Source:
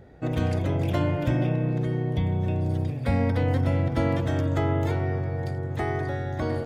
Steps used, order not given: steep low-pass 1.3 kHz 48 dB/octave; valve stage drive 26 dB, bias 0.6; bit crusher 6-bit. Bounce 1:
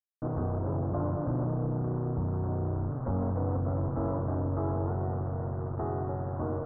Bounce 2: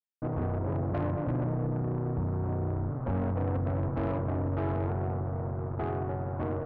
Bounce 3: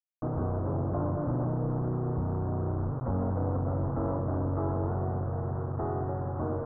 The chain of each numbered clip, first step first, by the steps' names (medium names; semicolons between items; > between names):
bit crusher > valve stage > steep low-pass; bit crusher > steep low-pass > valve stage; valve stage > bit crusher > steep low-pass